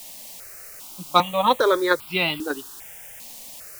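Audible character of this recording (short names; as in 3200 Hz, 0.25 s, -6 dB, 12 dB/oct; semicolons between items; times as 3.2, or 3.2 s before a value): a quantiser's noise floor 8-bit, dither triangular; notches that jump at a steady rate 2.5 Hz 380–1800 Hz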